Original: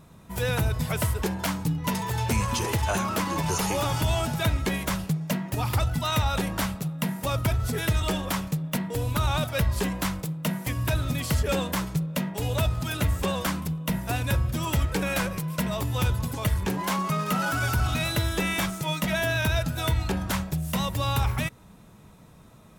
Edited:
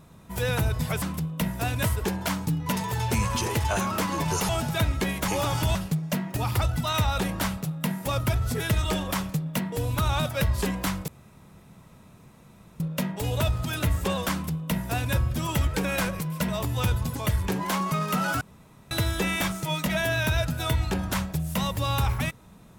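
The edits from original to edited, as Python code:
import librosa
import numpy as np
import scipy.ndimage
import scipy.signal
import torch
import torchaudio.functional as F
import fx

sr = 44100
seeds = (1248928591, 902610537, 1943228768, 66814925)

y = fx.edit(x, sr, fx.move(start_s=3.67, length_s=0.47, to_s=4.93),
    fx.room_tone_fill(start_s=10.26, length_s=1.72),
    fx.duplicate(start_s=13.5, length_s=0.82, to_s=1.02),
    fx.room_tone_fill(start_s=17.59, length_s=0.5), tone=tone)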